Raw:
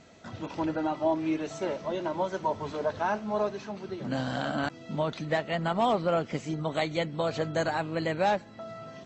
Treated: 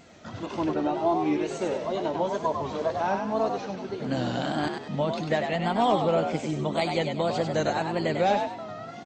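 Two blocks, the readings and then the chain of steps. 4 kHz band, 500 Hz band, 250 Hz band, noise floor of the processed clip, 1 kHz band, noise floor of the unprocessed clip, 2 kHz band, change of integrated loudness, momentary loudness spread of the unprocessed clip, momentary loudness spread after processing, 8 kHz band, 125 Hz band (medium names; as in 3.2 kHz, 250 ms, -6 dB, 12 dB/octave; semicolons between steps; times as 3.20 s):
+3.5 dB, +3.0 dB, +3.5 dB, -41 dBFS, +3.5 dB, -48 dBFS, +0.5 dB, +3.0 dB, 8 LU, 7 LU, no reading, +2.5 dB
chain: dynamic bell 1.4 kHz, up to -5 dB, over -43 dBFS, Q 1.7; wow and flutter 98 cents; on a send: frequency-shifting echo 98 ms, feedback 34%, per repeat +61 Hz, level -5.5 dB; on the sum: trim +2.5 dB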